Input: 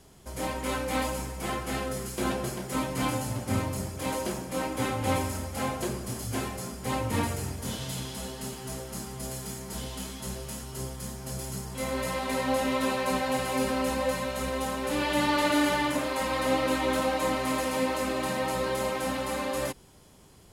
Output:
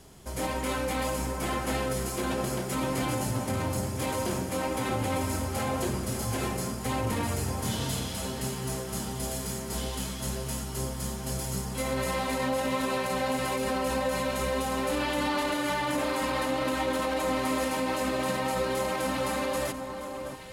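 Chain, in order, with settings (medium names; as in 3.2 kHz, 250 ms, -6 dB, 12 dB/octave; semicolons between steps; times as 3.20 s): peak limiter -24 dBFS, peak gain reduction 10.5 dB; echo whose repeats swap between lows and highs 630 ms, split 1.5 kHz, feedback 56%, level -7 dB; trim +3 dB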